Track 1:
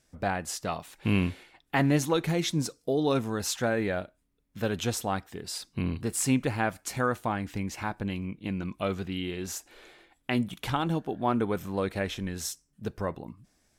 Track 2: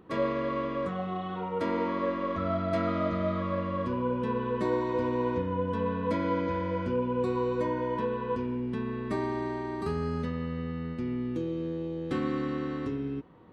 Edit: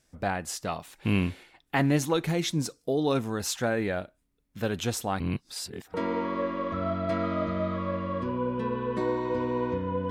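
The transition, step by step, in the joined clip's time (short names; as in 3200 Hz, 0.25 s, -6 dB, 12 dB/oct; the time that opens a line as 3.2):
track 1
5.2–5.94 reverse
5.94 switch to track 2 from 1.58 s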